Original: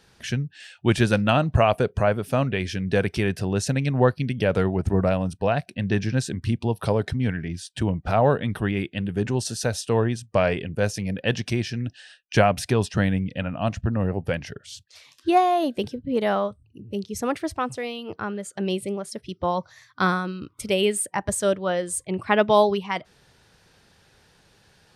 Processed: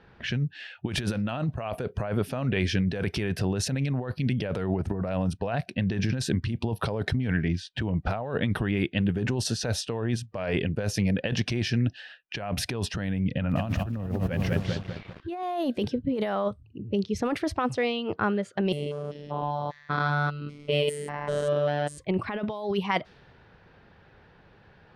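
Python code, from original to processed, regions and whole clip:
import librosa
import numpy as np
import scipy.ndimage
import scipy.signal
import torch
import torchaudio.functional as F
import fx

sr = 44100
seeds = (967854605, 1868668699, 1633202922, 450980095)

y = fx.chain(x, sr, fx.bass_treble(bass_db=6, treble_db=-5),
    fx.echo_crushed(ms=201, feedback_pct=55, bits=7, wet_db=-7.5), at=(13.29, 15.43))
y = fx.chain(y, sr, fx.spec_steps(hold_ms=200),
    fx.robotise(hz=146.0), at=(18.72, 21.98))
y = fx.env_lowpass(y, sr, base_hz=2000.0, full_db=-20.5)
y = fx.peak_eq(y, sr, hz=7900.0, db=-8.0, octaves=0.9)
y = fx.over_compress(y, sr, threshold_db=-27.0, ratio=-1.0)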